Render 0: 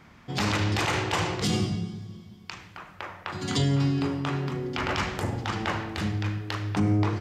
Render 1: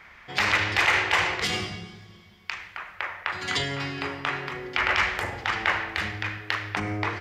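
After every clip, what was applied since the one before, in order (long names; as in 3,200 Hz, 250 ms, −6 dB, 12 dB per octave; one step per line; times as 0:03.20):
octave-band graphic EQ 125/250/2,000/8,000 Hz −12/−11/+10/−4 dB
level +1.5 dB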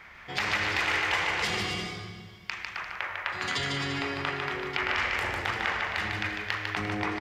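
downward compressor 2 to 1, threshold −31 dBFS, peak gain reduction 8 dB
bouncing-ball delay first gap 150 ms, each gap 0.75×, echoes 5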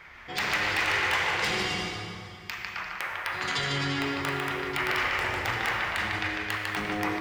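flanger 0.47 Hz, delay 1.8 ms, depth 6.5 ms, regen −62%
in parallel at −3.5 dB: wrap-around overflow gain 20 dB
on the sum: dense smooth reverb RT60 2.6 s, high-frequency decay 0.75×, DRR 5 dB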